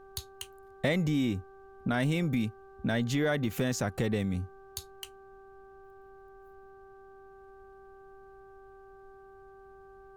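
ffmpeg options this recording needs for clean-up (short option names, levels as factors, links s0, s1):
-af "bandreject=f=389.2:t=h:w=4,bandreject=f=778.4:t=h:w=4,bandreject=f=1167.6:t=h:w=4,bandreject=f=1556.8:t=h:w=4,agate=range=0.0891:threshold=0.00562"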